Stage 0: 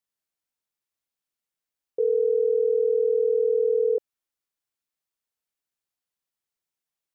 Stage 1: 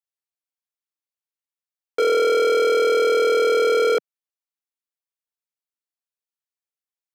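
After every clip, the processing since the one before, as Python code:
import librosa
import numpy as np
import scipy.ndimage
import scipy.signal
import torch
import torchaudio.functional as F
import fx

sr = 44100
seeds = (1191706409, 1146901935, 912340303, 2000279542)

y = fx.leveller(x, sr, passes=5)
y = scipy.signal.sosfilt(scipy.signal.bessel(8, 360.0, 'highpass', norm='mag', fs=sr, output='sos'), y)
y = F.gain(torch.from_numpy(y), 1.5).numpy()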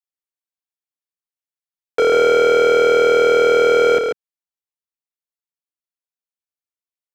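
y = fx.rider(x, sr, range_db=10, speed_s=0.5)
y = fx.leveller(y, sr, passes=3)
y = y + 10.0 ** (-5.5 / 20.0) * np.pad(y, (int(140 * sr / 1000.0), 0))[:len(y)]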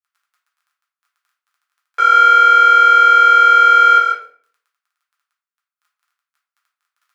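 y = fx.dmg_crackle(x, sr, seeds[0], per_s=17.0, level_db=-44.0)
y = fx.highpass_res(y, sr, hz=1300.0, q=4.0)
y = fx.room_shoebox(y, sr, seeds[1], volume_m3=50.0, walls='mixed', distance_m=0.88)
y = F.gain(torch.from_numpy(y), -6.5).numpy()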